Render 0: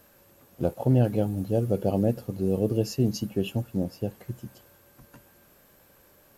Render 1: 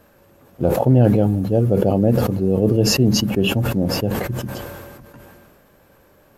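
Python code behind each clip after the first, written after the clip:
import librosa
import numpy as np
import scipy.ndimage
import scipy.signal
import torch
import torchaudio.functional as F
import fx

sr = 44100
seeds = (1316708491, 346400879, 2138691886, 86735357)

y = fx.high_shelf(x, sr, hz=3200.0, db=-11.0)
y = fx.sustainer(y, sr, db_per_s=28.0)
y = y * 10.0 ** (7.0 / 20.0)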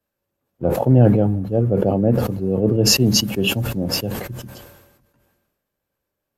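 y = fx.band_widen(x, sr, depth_pct=70)
y = y * 10.0 ** (-1.5 / 20.0)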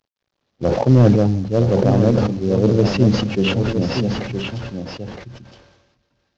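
y = fx.cvsd(x, sr, bps=32000)
y = y + 10.0 ** (-7.0 / 20.0) * np.pad(y, (int(966 * sr / 1000.0), 0))[:len(y)]
y = y * 10.0 ** (2.0 / 20.0)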